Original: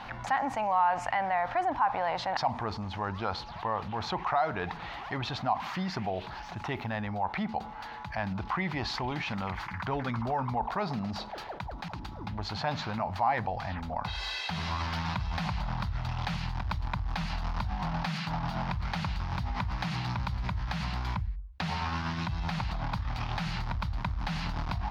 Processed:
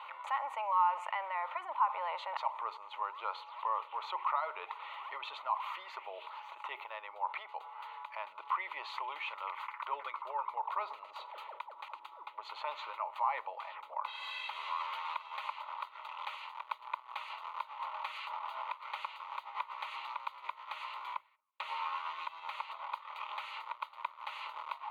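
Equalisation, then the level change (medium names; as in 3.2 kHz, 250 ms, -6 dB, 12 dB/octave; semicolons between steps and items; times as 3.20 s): high-pass 720 Hz 24 dB/octave; treble shelf 2 kHz -9 dB; static phaser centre 1.1 kHz, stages 8; +2.5 dB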